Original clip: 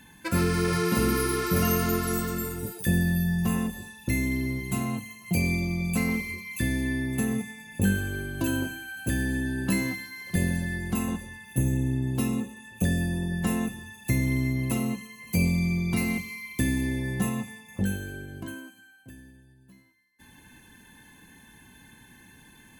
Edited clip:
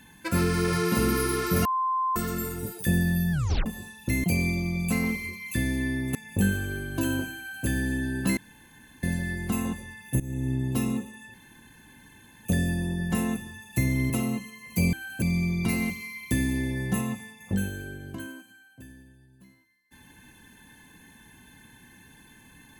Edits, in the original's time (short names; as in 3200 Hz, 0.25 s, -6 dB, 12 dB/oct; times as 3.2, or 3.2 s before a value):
1.65–2.16 bleep 1040 Hz -23 dBFS
3.32 tape stop 0.34 s
4.24–5.29 cut
7.2–7.58 cut
8.8–9.09 copy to 15.5
9.8–10.46 room tone
11.63–11.95 fade in linear, from -17 dB
12.77 insert room tone 1.11 s
14.42–14.67 cut